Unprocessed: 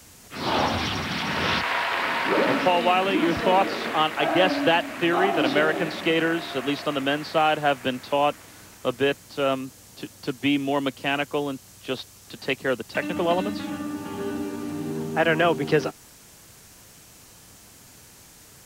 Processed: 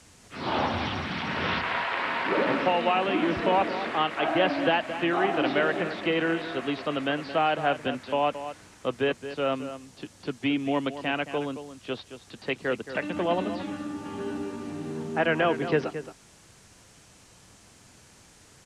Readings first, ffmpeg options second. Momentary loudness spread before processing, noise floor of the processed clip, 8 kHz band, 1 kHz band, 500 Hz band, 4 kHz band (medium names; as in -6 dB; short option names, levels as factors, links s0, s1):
12 LU, -55 dBFS, -9.5 dB, -3.0 dB, -3.0 dB, -5.5 dB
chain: -filter_complex "[0:a]lowpass=f=10000:w=0.5412,lowpass=f=10000:w=1.3066,acrossover=split=3900[s0][s1];[s1]acompressor=threshold=0.00282:ratio=4:attack=1:release=60[s2];[s0][s2]amix=inputs=2:normalize=0,asplit=2[s3][s4];[s4]adelay=221.6,volume=0.282,highshelf=f=4000:g=-4.99[s5];[s3][s5]amix=inputs=2:normalize=0,volume=0.668"